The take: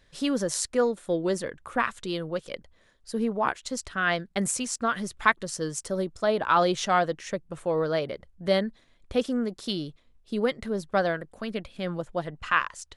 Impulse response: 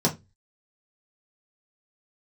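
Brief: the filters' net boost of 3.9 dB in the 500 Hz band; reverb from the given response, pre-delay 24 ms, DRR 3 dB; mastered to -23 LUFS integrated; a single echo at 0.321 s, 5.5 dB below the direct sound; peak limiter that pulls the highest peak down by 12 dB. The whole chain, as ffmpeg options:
-filter_complex "[0:a]equalizer=f=500:t=o:g=4.5,alimiter=limit=-16.5dB:level=0:latency=1,aecho=1:1:321:0.531,asplit=2[a][b];[1:a]atrim=start_sample=2205,adelay=24[c];[b][c]afir=irnorm=-1:irlink=0,volume=-15.5dB[d];[a][d]amix=inputs=2:normalize=0"

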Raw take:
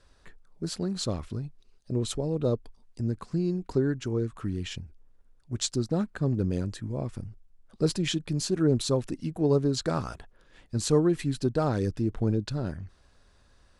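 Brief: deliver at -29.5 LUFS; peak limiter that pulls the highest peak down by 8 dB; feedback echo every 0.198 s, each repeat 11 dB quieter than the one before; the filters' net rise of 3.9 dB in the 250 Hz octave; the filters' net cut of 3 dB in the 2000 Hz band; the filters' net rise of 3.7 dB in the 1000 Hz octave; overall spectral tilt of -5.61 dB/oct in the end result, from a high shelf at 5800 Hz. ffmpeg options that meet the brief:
-af "equalizer=f=250:t=o:g=5,equalizer=f=1k:t=o:g=6.5,equalizer=f=2k:t=o:g=-7.5,highshelf=f=5.8k:g=3,alimiter=limit=-17.5dB:level=0:latency=1,aecho=1:1:198|396|594:0.282|0.0789|0.0221,volume=-1dB"

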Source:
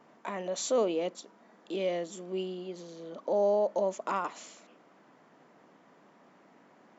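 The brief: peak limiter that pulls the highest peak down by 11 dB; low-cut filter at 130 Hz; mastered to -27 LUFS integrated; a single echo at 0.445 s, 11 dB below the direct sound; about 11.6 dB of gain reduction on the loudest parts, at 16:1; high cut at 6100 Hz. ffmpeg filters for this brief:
-af "highpass=130,lowpass=6.1k,acompressor=threshold=-34dB:ratio=16,alimiter=level_in=9.5dB:limit=-24dB:level=0:latency=1,volume=-9.5dB,aecho=1:1:445:0.282,volume=16dB"

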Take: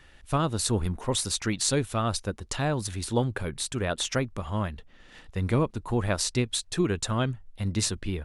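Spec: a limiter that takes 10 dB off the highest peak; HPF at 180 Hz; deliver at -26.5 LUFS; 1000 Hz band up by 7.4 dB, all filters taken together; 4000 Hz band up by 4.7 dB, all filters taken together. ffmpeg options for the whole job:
-af "highpass=180,equalizer=f=1k:t=o:g=9,equalizer=f=4k:t=o:g=5,volume=2.5dB,alimiter=limit=-13dB:level=0:latency=1"

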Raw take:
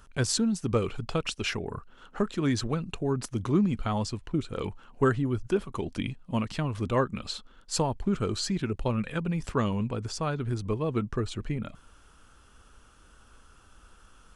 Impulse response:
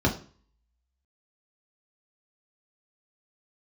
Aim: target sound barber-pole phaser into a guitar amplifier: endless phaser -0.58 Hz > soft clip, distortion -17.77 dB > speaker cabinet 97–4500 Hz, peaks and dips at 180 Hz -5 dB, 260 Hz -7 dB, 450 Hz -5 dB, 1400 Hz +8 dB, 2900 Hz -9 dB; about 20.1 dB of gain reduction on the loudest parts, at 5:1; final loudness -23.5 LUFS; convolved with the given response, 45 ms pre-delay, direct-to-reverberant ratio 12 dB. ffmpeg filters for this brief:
-filter_complex "[0:a]acompressor=threshold=-43dB:ratio=5,asplit=2[a][b];[1:a]atrim=start_sample=2205,adelay=45[c];[b][c]afir=irnorm=-1:irlink=0,volume=-25dB[d];[a][d]amix=inputs=2:normalize=0,asplit=2[e][f];[f]afreqshift=-0.58[g];[e][g]amix=inputs=2:normalize=1,asoftclip=threshold=-38dB,highpass=97,equalizer=f=180:t=q:w=4:g=-5,equalizer=f=260:t=q:w=4:g=-7,equalizer=f=450:t=q:w=4:g=-5,equalizer=f=1.4k:t=q:w=4:g=8,equalizer=f=2.9k:t=q:w=4:g=-9,lowpass=f=4.5k:w=0.5412,lowpass=f=4.5k:w=1.3066,volume=28dB"

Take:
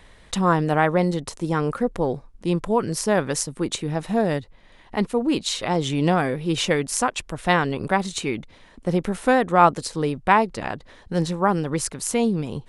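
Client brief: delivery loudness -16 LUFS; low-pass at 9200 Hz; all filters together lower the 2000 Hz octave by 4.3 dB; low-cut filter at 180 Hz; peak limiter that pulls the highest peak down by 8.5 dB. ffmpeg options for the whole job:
-af "highpass=180,lowpass=9.2k,equalizer=f=2k:t=o:g=-5.5,volume=9.5dB,alimiter=limit=-2dB:level=0:latency=1"

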